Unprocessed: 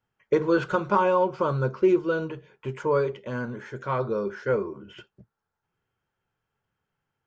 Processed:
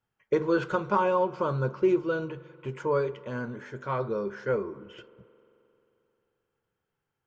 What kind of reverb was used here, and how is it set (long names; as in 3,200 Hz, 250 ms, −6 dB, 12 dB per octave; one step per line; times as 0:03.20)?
spring reverb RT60 3.1 s, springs 44 ms, chirp 30 ms, DRR 19 dB
level −3 dB